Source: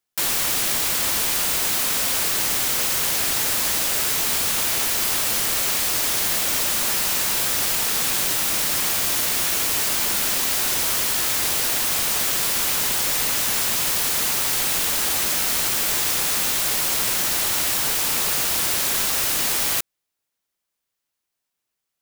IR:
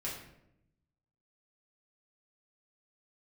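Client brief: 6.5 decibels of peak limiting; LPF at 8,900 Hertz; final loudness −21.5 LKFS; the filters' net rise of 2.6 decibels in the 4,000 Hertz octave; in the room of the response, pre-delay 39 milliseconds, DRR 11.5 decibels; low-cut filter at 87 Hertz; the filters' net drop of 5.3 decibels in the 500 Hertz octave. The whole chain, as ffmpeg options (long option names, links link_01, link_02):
-filter_complex "[0:a]highpass=87,lowpass=8900,equalizer=frequency=500:width_type=o:gain=-7,equalizer=frequency=4000:width_type=o:gain=3.5,alimiter=limit=-17dB:level=0:latency=1,asplit=2[link_01][link_02];[1:a]atrim=start_sample=2205,adelay=39[link_03];[link_02][link_03]afir=irnorm=-1:irlink=0,volume=-13dB[link_04];[link_01][link_04]amix=inputs=2:normalize=0,volume=2.5dB"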